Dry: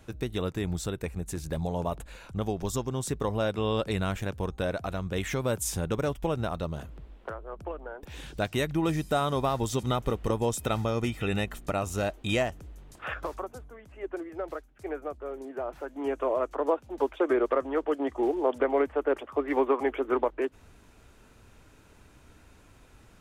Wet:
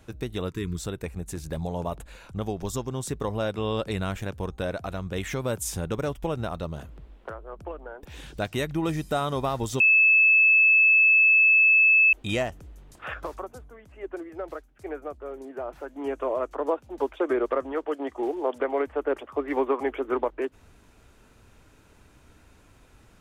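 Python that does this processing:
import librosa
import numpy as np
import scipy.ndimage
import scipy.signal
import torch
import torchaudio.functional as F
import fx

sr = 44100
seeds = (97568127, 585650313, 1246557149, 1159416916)

y = fx.spec_erase(x, sr, start_s=0.51, length_s=0.26, low_hz=460.0, high_hz=930.0)
y = fx.low_shelf(y, sr, hz=190.0, db=-8.5, at=(17.72, 18.87))
y = fx.edit(y, sr, fx.bleep(start_s=9.8, length_s=2.33, hz=2610.0, db=-14.5), tone=tone)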